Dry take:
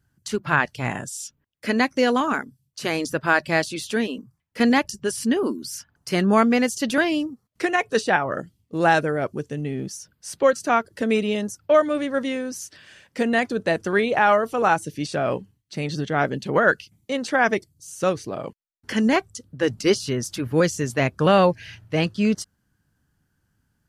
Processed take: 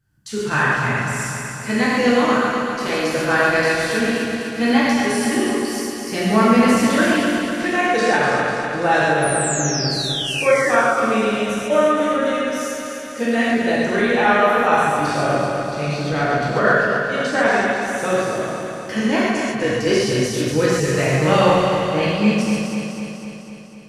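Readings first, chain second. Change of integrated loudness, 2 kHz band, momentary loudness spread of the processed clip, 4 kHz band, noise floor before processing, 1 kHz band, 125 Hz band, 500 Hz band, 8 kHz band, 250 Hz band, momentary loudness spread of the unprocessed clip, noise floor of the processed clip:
+4.0 dB, +5.5 dB, 9 LU, +6.5 dB, -72 dBFS, +4.5 dB, +5.0 dB, +4.0 dB, +6.5 dB, +4.5 dB, 14 LU, -31 dBFS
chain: regenerating reverse delay 0.125 s, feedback 79%, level -5 dB; painted sound fall, 9.22–11.07, 1100–10000 Hz -27 dBFS; non-linear reverb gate 0.17 s flat, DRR -6 dB; gain -4.5 dB

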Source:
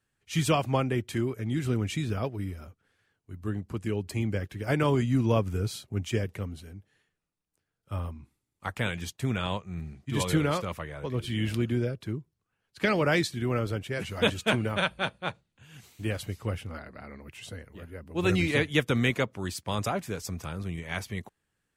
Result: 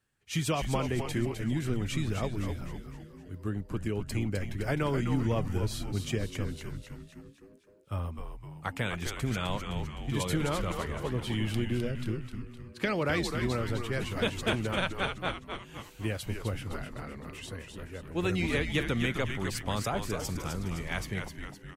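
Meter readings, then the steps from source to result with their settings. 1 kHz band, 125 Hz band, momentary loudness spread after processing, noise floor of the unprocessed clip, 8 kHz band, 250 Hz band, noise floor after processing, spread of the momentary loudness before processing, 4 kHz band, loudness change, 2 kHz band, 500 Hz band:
-2.5 dB, -2.0 dB, 13 LU, -82 dBFS, -0.5 dB, -2.5 dB, -53 dBFS, 14 LU, -2.0 dB, -3.0 dB, -3.0 dB, -3.5 dB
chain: compressor 2.5:1, threshold -28 dBFS, peak gain reduction 7 dB; on a send: frequency-shifting echo 0.257 s, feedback 51%, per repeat -120 Hz, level -6 dB

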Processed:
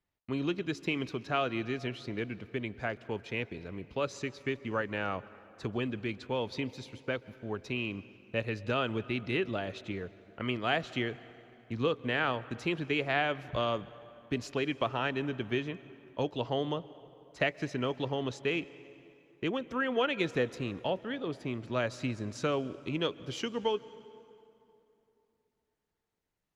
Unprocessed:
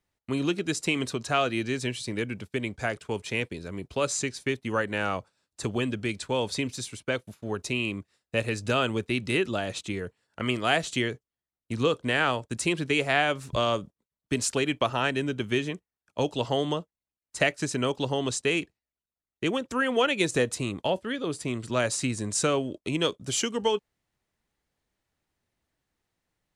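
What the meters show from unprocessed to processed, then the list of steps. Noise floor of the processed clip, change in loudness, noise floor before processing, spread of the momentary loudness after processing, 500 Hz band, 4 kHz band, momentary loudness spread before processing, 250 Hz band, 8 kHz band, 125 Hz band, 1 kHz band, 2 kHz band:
-81 dBFS, -6.0 dB, under -85 dBFS, 10 LU, -5.0 dB, -7.5 dB, 8 LU, -5.0 dB, -20.0 dB, -5.0 dB, -5.5 dB, -6.0 dB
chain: running mean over 5 samples; plate-style reverb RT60 3 s, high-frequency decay 0.7×, pre-delay 0.115 s, DRR 17 dB; gain -5 dB; Opus 48 kbps 48000 Hz

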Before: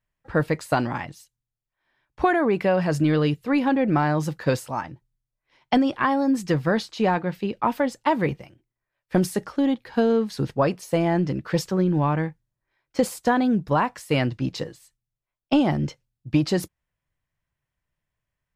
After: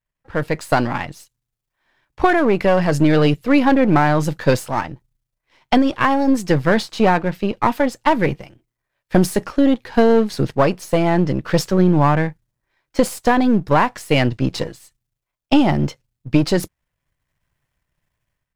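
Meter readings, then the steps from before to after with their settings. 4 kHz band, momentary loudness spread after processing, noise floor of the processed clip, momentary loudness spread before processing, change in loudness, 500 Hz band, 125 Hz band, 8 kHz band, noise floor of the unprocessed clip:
+6.5 dB, 9 LU, -82 dBFS, 8 LU, +6.0 dB, +6.0 dB, +5.5 dB, +6.0 dB, under -85 dBFS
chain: half-wave gain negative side -7 dB; AGC gain up to 11.5 dB

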